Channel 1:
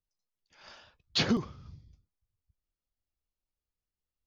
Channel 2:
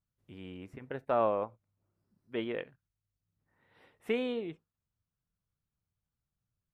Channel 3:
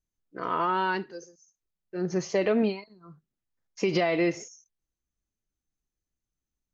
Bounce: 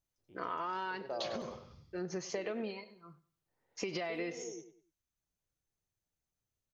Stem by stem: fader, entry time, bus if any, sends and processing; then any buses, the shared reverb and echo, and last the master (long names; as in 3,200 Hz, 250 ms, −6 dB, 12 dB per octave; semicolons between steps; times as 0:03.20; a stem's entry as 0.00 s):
−0.5 dB, 0.05 s, no send, echo send −12.5 dB, low-shelf EQ 220 Hz −11 dB; downward compressor, threshold −33 dBFS, peak gain reduction 9 dB
−6.0 dB, 0.00 s, no send, echo send −9 dB, flat-topped bell 520 Hz +8.5 dB; reverb reduction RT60 0.71 s; automatic ducking −9 dB, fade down 0.35 s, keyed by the third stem
−1.5 dB, 0.00 s, no send, echo send −21 dB, low-shelf EQ 390 Hz −7.5 dB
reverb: not used
echo: repeating echo 98 ms, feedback 30%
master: downward compressor 6 to 1, threshold −35 dBFS, peak gain reduction 10.5 dB